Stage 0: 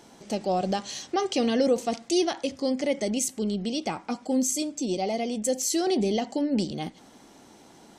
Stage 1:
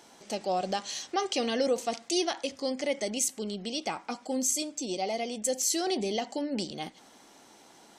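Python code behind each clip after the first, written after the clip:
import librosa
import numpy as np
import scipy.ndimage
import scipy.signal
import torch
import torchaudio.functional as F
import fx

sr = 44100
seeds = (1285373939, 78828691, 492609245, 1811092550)

y = fx.low_shelf(x, sr, hz=350.0, db=-12.0)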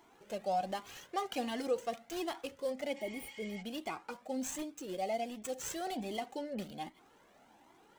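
y = scipy.signal.medfilt(x, 9)
y = fx.spec_repair(y, sr, seeds[0], start_s=2.99, length_s=0.6, low_hz=820.0, high_hz=8500.0, source='before')
y = fx.comb_cascade(y, sr, direction='rising', hz=1.3)
y = F.gain(torch.from_numpy(y), -1.0).numpy()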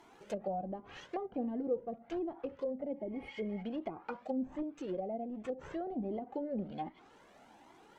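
y = fx.high_shelf(x, sr, hz=8300.0, db=-6.0)
y = fx.env_lowpass_down(y, sr, base_hz=430.0, full_db=-35.0)
y = F.gain(torch.from_numpy(y), 3.5).numpy()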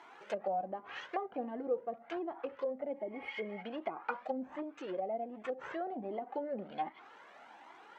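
y = fx.bandpass_q(x, sr, hz=1500.0, q=0.87)
y = F.gain(torch.from_numpy(y), 8.5).numpy()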